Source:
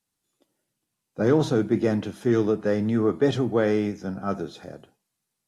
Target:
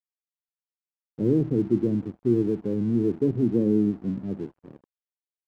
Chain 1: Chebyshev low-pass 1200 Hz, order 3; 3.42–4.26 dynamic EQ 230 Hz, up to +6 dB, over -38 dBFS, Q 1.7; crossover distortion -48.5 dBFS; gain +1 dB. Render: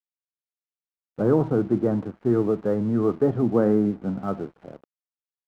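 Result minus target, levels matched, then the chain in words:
1000 Hz band +15.5 dB
Chebyshev low-pass 360 Hz, order 3; 3.42–4.26 dynamic EQ 230 Hz, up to +6 dB, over -38 dBFS, Q 1.7; crossover distortion -48.5 dBFS; gain +1 dB

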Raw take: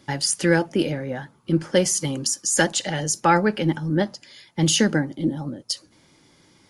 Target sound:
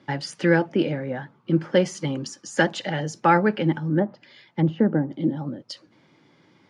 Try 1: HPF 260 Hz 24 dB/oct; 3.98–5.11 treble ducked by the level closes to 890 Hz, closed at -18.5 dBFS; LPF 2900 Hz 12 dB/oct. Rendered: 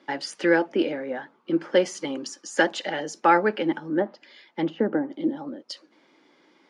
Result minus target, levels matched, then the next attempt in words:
125 Hz band -14.0 dB
HPF 110 Hz 24 dB/oct; 3.98–5.11 treble ducked by the level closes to 890 Hz, closed at -18.5 dBFS; LPF 2900 Hz 12 dB/oct

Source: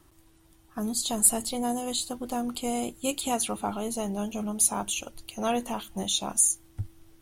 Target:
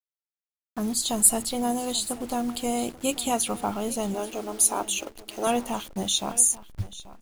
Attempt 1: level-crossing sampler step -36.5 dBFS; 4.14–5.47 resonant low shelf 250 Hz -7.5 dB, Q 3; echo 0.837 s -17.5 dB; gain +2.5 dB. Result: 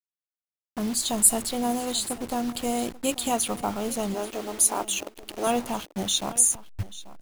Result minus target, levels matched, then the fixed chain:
level-crossing sampler: distortion +7 dB
level-crossing sampler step -43 dBFS; 4.14–5.47 resonant low shelf 250 Hz -7.5 dB, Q 3; echo 0.837 s -17.5 dB; gain +2.5 dB

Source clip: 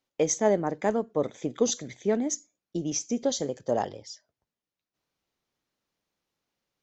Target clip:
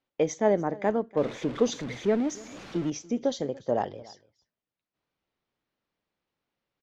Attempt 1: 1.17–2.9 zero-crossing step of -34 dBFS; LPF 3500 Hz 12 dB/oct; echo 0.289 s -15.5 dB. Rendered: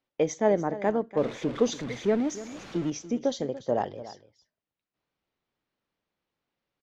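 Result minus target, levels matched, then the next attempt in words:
echo-to-direct +6.5 dB
1.17–2.9 zero-crossing step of -34 dBFS; LPF 3500 Hz 12 dB/oct; echo 0.289 s -22 dB

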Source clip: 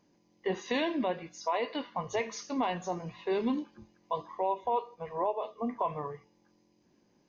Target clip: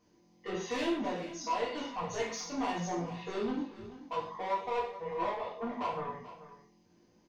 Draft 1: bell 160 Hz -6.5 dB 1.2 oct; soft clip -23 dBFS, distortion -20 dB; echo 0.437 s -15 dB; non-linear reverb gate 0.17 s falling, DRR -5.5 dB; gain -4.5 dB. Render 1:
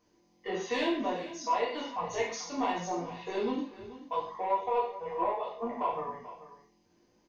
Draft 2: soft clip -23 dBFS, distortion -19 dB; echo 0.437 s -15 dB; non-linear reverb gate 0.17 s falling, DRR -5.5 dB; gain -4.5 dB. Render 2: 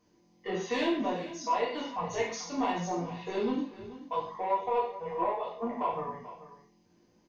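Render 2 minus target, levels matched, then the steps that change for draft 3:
soft clip: distortion -10 dB
change: soft clip -31.5 dBFS, distortion -9 dB

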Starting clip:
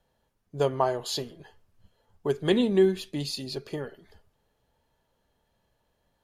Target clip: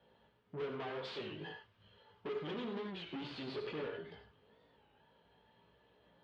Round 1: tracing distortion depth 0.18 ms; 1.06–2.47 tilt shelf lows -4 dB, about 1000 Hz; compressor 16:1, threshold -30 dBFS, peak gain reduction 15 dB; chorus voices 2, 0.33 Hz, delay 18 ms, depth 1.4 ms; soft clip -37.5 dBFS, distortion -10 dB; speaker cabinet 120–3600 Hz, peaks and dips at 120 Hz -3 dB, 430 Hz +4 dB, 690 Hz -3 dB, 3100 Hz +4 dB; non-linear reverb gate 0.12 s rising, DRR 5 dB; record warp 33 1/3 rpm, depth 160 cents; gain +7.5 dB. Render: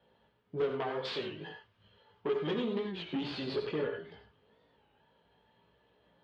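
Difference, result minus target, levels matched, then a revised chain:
soft clip: distortion -6 dB
tracing distortion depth 0.18 ms; 1.06–2.47 tilt shelf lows -4 dB, about 1000 Hz; compressor 16:1, threshold -30 dBFS, peak gain reduction 15 dB; chorus voices 2, 0.33 Hz, delay 18 ms, depth 1.4 ms; soft clip -48.5 dBFS, distortion -3 dB; speaker cabinet 120–3600 Hz, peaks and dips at 120 Hz -3 dB, 430 Hz +4 dB, 690 Hz -3 dB, 3100 Hz +4 dB; non-linear reverb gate 0.12 s rising, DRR 5 dB; record warp 33 1/3 rpm, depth 160 cents; gain +7.5 dB

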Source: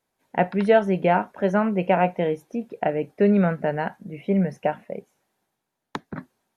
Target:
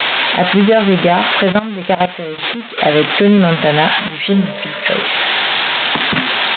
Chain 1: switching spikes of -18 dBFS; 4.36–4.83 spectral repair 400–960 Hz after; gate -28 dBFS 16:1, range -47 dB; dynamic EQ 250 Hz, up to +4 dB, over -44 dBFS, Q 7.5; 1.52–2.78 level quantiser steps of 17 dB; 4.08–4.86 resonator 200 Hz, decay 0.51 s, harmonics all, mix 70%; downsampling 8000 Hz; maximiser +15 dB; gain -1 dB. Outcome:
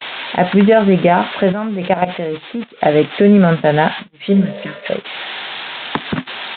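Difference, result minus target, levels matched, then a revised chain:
switching spikes: distortion -12 dB
switching spikes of -6 dBFS; 4.36–4.83 spectral repair 400–960 Hz after; gate -28 dBFS 16:1, range -47 dB; dynamic EQ 250 Hz, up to +4 dB, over -44 dBFS, Q 7.5; 1.52–2.78 level quantiser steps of 17 dB; 4.08–4.86 resonator 200 Hz, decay 0.51 s, harmonics all, mix 70%; downsampling 8000 Hz; maximiser +15 dB; gain -1 dB

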